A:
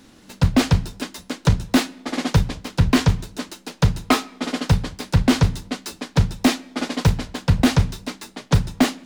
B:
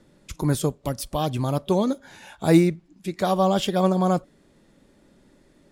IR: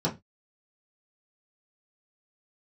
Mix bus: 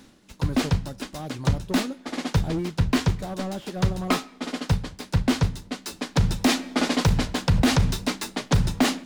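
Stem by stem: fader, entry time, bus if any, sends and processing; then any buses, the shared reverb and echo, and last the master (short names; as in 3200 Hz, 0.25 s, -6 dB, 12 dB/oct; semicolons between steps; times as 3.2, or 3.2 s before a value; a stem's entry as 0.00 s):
0.0 dB, 0.00 s, no send, AGC; auto duck -11 dB, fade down 0.20 s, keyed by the second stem
-10.0 dB, 0.00 s, no send, slew limiter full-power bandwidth 58 Hz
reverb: off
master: limiter -11.5 dBFS, peak gain reduction 10.5 dB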